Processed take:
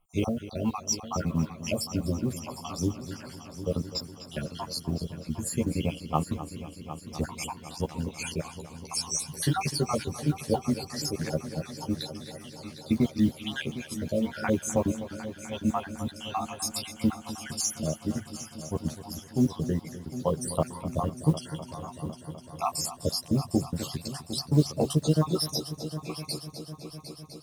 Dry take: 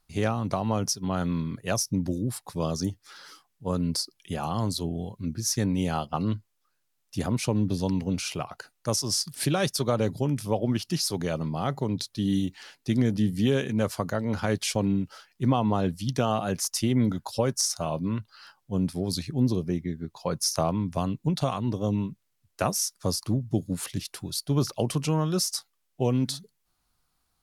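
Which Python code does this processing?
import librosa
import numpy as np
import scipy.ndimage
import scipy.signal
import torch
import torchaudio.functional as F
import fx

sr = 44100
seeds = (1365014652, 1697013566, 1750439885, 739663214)

y = fx.spec_dropout(x, sr, seeds[0], share_pct=68)
y = fx.doubler(y, sr, ms=13.0, db=-2.0)
y = fx.echo_heads(y, sr, ms=252, heads='first and third', feedback_pct=68, wet_db=-14.0)
y = fx.mod_noise(y, sr, seeds[1], snr_db=33)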